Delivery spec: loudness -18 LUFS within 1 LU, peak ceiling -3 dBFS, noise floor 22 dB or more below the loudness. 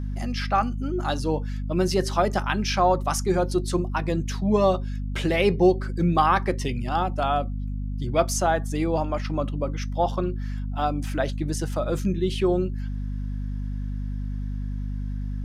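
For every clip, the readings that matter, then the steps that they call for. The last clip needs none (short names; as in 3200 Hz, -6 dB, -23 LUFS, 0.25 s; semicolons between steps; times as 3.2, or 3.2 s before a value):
hum 50 Hz; harmonics up to 250 Hz; hum level -27 dBFS; loudness -25.5 LUFS; peak -7.0 dBFS; loudness target -18.0 LUFS
-> de-hum 50 Hz, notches 5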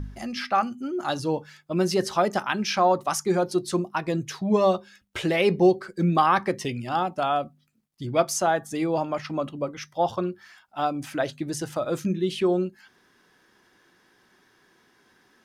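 hum none; loudness -25.5 LUFS; peak -8.0 dBFS; loudness target -18.0 LUFS
-> gain +7.5 dB; limiter -3 dBFS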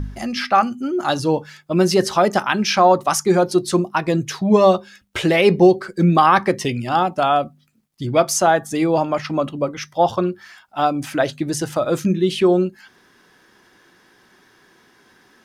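loudness -18.0 LUFS; peak -3.0 dBFS; noise floor -55 dBFS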